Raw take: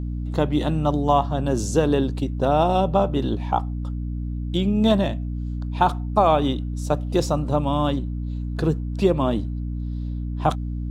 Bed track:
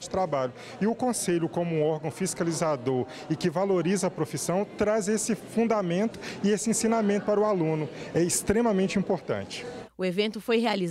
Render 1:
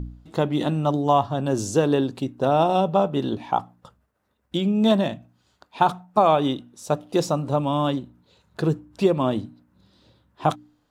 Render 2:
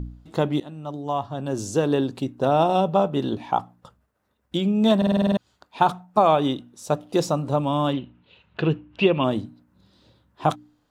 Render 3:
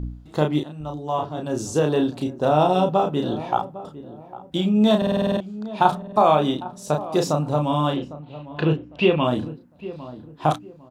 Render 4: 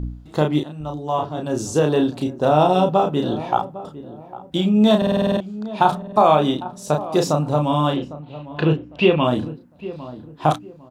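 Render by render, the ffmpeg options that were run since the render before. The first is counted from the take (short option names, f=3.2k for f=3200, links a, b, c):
-af "bandreject=f=60:t=h:w=4,bandreject=f=120:t=h:w=4,bandreject=f=180:t=h:w=4,bandreject=f=240:t=h:w=4,bandreject=f=300:t=h:w=4"
-filter_complex "[0:a]asettb=1/sr,asplit=3[a][b][c];[a]atrim=end=7.934[d];[b]atrim=start=7.93:end=9.24,asetpts=PTS-STARTPTS,afade=t=in:d=0.004:c=qsin,afade=t=out:st=1.306:d=0.004:c=qsin,lowpass=f=2.8k:t=q:w=5[e];[c]atrim=start=9.236[f];[d][e]acrossfade=d=0.004:c1=hsin:c2=qsin[g];[g][f]acrossfade=d=0.004:c1=qsin:c2=hsin,asplit=10[h][i][j][k][l][m][n][o][p][q];[h]atrim=end=0.6,asetpts=PTS-STARTPTS,afade=t=out:st=0.596:d=0.004:c=hsin:silence=0.11885[r];[i]atrim=start=0.6:end=5.022,asetpts=PTS-STARTPTS,afade=t=in:d=1.54:silence=0.11885[s];[j]atrim=start=4.968:end=5.022[t];[k]atrim=start=4.968:end=5.022[u];[l]atrim=start=4.968:end=5.022[v];[m]atrim=start=4.968:end=5.022[w];[n]atrim=start=4.968:end=5.022[x];[o]atrim=start=4.968:end=5.022[y];[p]atrim=start=4.968:end=5.022[z];[q]atrim=start=5.368[aa];[r][s]concat=n=2:v=0:a=1[ab];[ab][t]acrossfade=d=0.004:c1=hsin:c2=hsin[ac];[ac][u]acrossfade=d=0.004:c1=hsin:c2=hsin[ad];[ad][v]acrossfade=d=0.004:c1=hsin:c2=hsin[ae];[ae][w]acrossfade=d=0.004:c1=hsin:c2=hsin[af];[af][x]acrossfade=d=0.004:c1=hsin:c2=hsin[ag];[ag][y]acrossfade=d=0.004:c1=hsin:c2=hsin[ah];[ah][z]acrossfade=d=0.004:c1=hsin:c2=hsin[ai];[ai][aa]acrossfade=d=0.004:c1=hsin:c2=hsin"
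-filter_complex "[0:a]asplit=2[a][b];[b]adelay=33,volume=-4dB[c];[a][c]amix=inputs=2:normalize=0,asplit=2[d][e];[e]adelay=804,lowpass=f=990:p=1,volume=-14.5dB,asplit=2[f][g];[g]adelay=804,lowpass=f=990:p=1,volume=0.33,asplit=2[h][i];[i]adelay=804,lowpass=f=990:p=1,volume=0.33[j];[d][f][h][j]amix=inputs=4:normalize=0"
-af "volume=2.5dB,alimiter=limit=-3dB:level=0:latency=1"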